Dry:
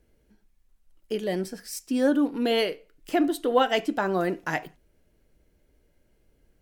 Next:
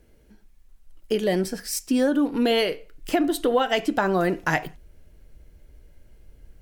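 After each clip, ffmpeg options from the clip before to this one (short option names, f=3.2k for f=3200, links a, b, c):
-af "asubboost=boost=2.5:cutoff=140,acompressor=threshold=-25dB:ratio=6,volume=7.5dB"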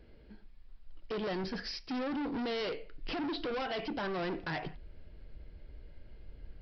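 -af "alimiter=limit=-18.5dB:level=0:latency=1:release=236,aresample=11025,volume=33.5dB,asoftclip=hard,volume=-33.5dB,aresample=44100"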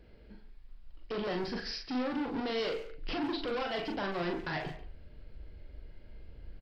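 -filter_complex "[0:a]asplit=2[a][b];[b]adelay=40,volume=-4.5dB[c];[a][c]amix=inputs=2:normalize=0,asplit=2[d][e];[e]adelay=140,highpass=300,lowpass=3.4k,asoftclip=type=hard:threshold=-36dB,volume=-11dB[f];[d][f]amix=inputs=2:normalize=0"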